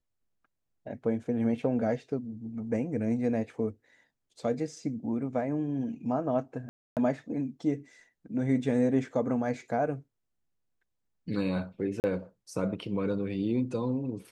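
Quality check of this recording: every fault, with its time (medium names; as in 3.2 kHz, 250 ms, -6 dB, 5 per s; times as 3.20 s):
6.69–6.97 s: dropout 278 ms
12.00–12.04 s: dropout 39 ms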